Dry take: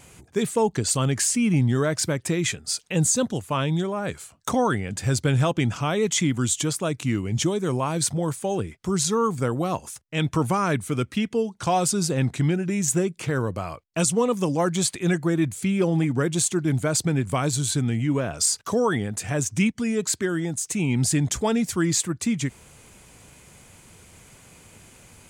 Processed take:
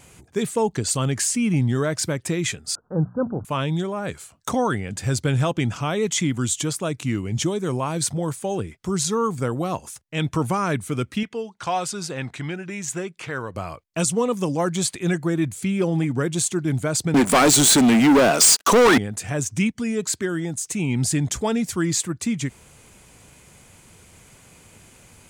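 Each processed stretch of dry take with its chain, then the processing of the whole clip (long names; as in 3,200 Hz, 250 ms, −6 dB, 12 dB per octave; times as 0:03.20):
0:02.75–0:03.45: mu-law and A-law mismatch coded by mu + Butterworth low-pass 1,500 Hz 96 dB per octave + mains-hum notches 60/120/180/240 Hz
0:11.23–0:13.55: low-pass filter 1,200 Hz 6 dB per octave + tilt shelving filter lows −10 dB, about 770 Hz
0:17.14–0:18.98: high-pass filter 210 Hz 24 dB per octave + leveller curve on the samples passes 5
whole clip: no processing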